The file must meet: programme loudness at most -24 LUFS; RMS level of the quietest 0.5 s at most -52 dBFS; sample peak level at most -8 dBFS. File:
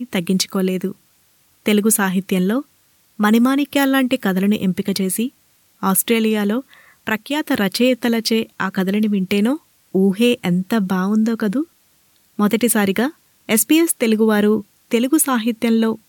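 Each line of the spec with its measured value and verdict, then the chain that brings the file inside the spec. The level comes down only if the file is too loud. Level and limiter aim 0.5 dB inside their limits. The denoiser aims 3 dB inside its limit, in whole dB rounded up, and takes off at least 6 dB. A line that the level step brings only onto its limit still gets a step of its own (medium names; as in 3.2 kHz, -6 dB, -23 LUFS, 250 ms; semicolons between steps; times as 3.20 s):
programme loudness -18.0 LUFS: fail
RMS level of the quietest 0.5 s -57 dBFS: pass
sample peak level -4.5 dBFS: fail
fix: trim -6.5 dB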